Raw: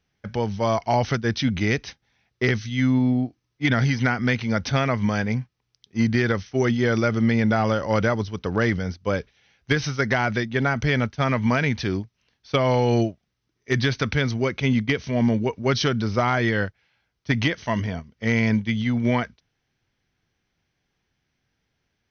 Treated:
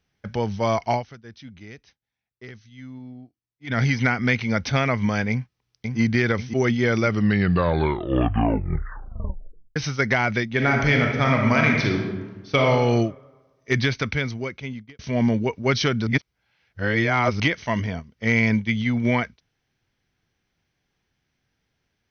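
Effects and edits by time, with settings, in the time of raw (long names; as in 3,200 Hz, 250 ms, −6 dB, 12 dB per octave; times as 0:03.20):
0:00.91–0:03.79: duck −19.5 dB, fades 0.13 s
0:05.30–0:05.99: delay throw 540 ms, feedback 45%, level −4 dB
0:07.03: tape stop 2.73 s
0:10.48–0:12.62: thrown reverb, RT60 1.3 s, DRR 1 dB
0:13.80–0:14.99: fade out
0:16.07–0:17.40: reverse
whole clip: dynamic equaliser 2,200 Hz, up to +7 dB, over −45 dBFS, Q 6.2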